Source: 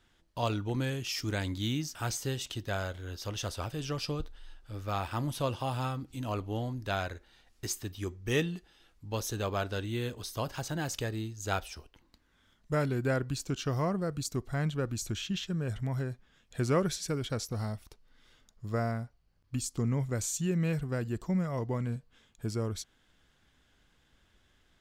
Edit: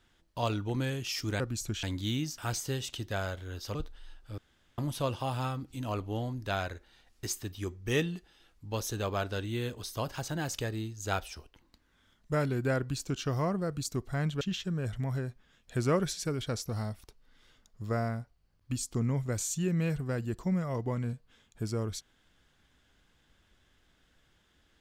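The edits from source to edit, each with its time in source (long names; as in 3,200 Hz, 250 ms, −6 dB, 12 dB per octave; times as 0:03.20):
0:03.32–0:04.15: remove
0:04.78–0:05.18: fill with room tone
0:14.81–0:15.24: move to 0:01.40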